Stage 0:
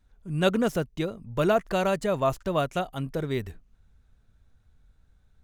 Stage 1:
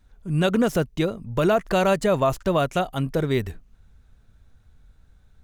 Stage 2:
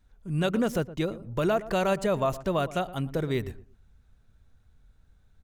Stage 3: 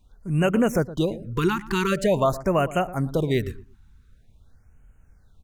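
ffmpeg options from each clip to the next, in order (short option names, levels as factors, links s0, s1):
-af "alimiter=limit=0.133:level=0:latency=1:release=64,volume=2.11"
-filter_complex "[0:a]asplit=2[s0][s1];[s1]adelay=116,lowpass=f=920:p=1,volume=0.188,asplit=2[s2][s3];[s3]adelay=116,lowpass=f=920:p=1,volume=0.25,asplit=2[s4][s5];[s5]adelay=116,lowpass=f=920:p=1,volume=0.25[s6];[s0][s2][s4][s6]amix=inputs=4:normalize=0,volume=0.531"
-af "afftfilt=real='re*(1-between(b*sr/1024,540*pow(4500/540,0.5+0.5*sin(2*PI*0.46*pts/sr))/1.41,540*pow(4500/540,0.5+0.5*sin(2*PI*0.46*pts/sr))*1.41))':imag='im*(1-between(b*sr/1024,540*pow(4500/540,0.5+0.5*sin(2*PI*0.46*pts/sr))/1.41,540*pow(4500/540,0.5+0.5*sin(2*PI*0.46*pts/sr))*1.41))':win_size=1024:overlap=0.75,volume=1.88"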